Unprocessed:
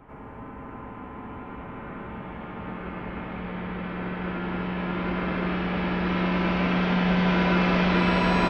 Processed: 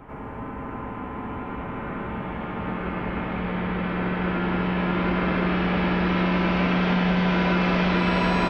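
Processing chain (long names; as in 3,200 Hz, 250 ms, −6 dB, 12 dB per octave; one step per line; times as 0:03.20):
downward compressor 4 to 1, threshold −25 dBFS, peak gain reduction 6.5 dB
level +6 dB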